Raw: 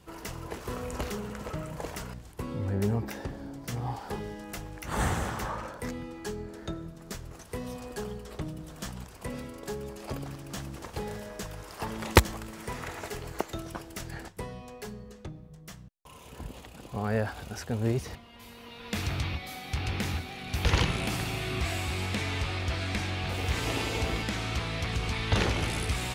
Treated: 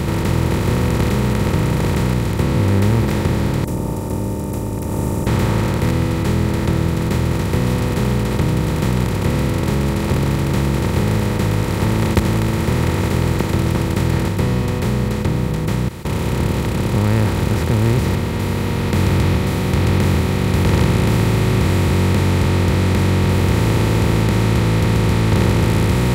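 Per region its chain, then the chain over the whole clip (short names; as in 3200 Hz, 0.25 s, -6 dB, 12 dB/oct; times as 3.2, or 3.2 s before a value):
3.64–5.27 tilt shelf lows -10 dB + robotiser 299 Hz + inverse Chebyshev band-stop 1500–4400 Hz, stop band 60 dB
whole clip: per-bin compression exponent 0.2; bell 160 Hz +14.5 dB 2.1 oct; gain -6.5 dB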